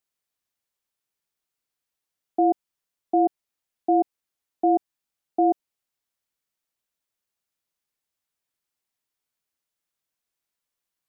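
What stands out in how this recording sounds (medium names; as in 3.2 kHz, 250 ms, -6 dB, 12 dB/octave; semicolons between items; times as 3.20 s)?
noise floor -86 dBFS; spectral tilt -3.0 dB/octave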